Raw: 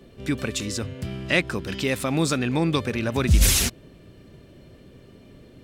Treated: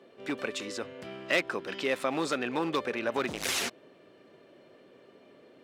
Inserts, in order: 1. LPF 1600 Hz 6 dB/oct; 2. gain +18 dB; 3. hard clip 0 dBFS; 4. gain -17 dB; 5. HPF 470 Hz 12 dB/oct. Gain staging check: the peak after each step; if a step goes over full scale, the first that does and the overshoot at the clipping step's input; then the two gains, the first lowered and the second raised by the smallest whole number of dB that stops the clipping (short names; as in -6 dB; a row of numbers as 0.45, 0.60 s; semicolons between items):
-8.5, +9.5, 0.0, -17.0, -12.0 dBFS; step 2, 9.5 dB; step 2 +8 dB, step 4 -7 dB